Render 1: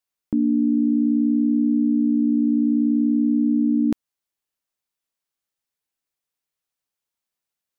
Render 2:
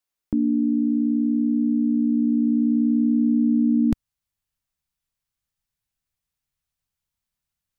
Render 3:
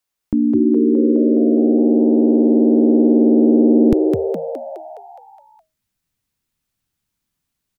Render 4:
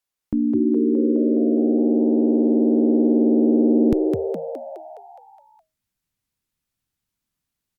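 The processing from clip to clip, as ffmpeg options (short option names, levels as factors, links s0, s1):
-af "asubboost=boost=10:cutoff=120"
-filter_complex "[0:a]asplit=9[s0][s1][s2][s3][s4][s5][s6][s7][s8];[s1]adelay=208,afreqshift=79,volume=0.668[s9];[s2]adelay=416,afreqshift=158,volume=0.389[s10];[s3]adelay=624,afreqshift=237,volume=0.224[s11];[s4]adelay=832,afreqshift=316,volume=0.13[s12];[s5]adelay=1040,afreqshift=395,volume=0.0759[s13];[s6]adelay=1248,afreqshift=474,volume=0.0437[s14];[s7]adelay=1456,afreqshift=553,volume=0.0254[s15];[s8]adelay=1664,afreqshift=632,volume=0.0148[s16];[s0][s9][s10][s11][s12][s13][s14][s15][s16]amix=inputs=9:normalize=0,volume=1.78"
-af "volume=0.596" -ar 48000 -c:a libopus -b:a 128k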